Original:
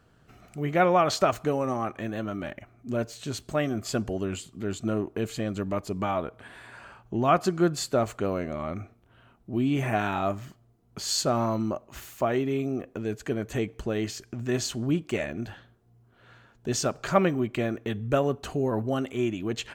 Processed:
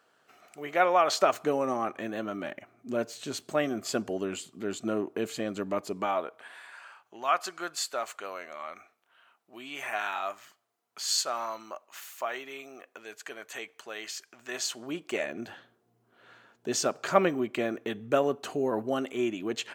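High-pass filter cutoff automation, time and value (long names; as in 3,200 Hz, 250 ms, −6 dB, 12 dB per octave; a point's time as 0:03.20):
0:00.96 530 Hz
0:01.51 250 Hz
0:05.85 250 Hz
0:06.76 990 Hz
0:14.32 990 Hz
0:15.48 270 Hz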